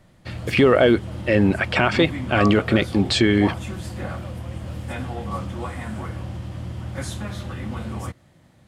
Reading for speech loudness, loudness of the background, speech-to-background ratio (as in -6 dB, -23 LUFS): -19.0 LUFS, -31.5 LUFS, 12.5 dB